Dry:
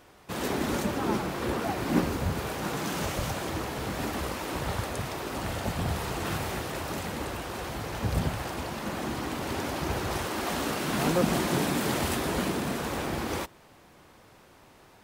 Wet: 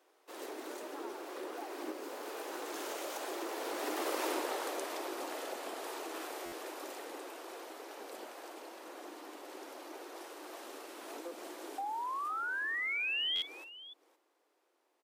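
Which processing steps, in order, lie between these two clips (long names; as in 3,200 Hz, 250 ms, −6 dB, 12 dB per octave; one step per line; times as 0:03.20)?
source passing by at 0:04.27, 14 m/s, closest 2.5 metres
Butterworth high-pass 310 Hz 48 dB per octave
tilt shelving filter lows +5 dB, about 1,200 Hz
sound drawn into the spectrogram rise, 0:11.78–0:13.42, 770–3,500 Hz −43 dBFS
downward compressor 2.5 to 1, threshold −53 dBFS, peak gain reduction 15.5 dB
high-shelf EQ 2,800 Hz +8 dB
multi-tap delay 54/517 ms −14.5/−16.5 dB
buffer that repeats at 0:06.45/0:13.35, samples 512, times 5
level +12 dB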